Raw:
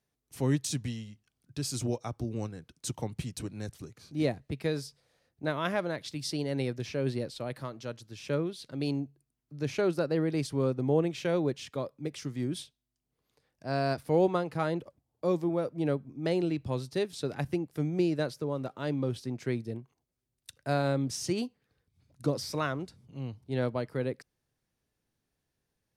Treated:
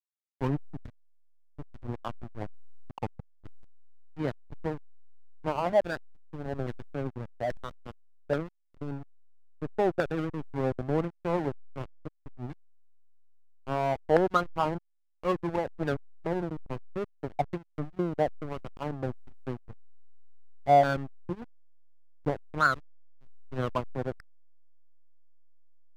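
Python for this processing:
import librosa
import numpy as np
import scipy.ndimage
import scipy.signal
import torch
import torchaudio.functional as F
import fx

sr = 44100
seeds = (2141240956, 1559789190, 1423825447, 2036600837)

y = fx.filter_lfo_lowpass(x, sr, shape='saw_down', hz=1.2, low_hz=660.0, high_hz=1700.0, q=7.8)
y = fx.backlash(y, sr, play_db=-21.5)
y = y * librosa.db_to_amplitude(-1.0)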